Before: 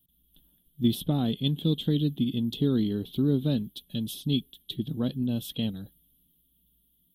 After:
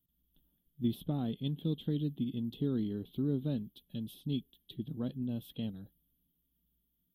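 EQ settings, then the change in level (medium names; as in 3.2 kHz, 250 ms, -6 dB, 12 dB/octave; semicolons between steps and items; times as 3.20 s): peaking EQ 6.8 kHz -14 dB 1.7 oct; -8.0 dB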